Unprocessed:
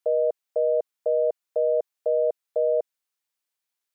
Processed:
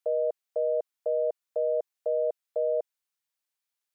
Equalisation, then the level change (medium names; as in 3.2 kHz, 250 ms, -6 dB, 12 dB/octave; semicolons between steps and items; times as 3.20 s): bass shelf 350 Hz -7 dB; -2.5 dB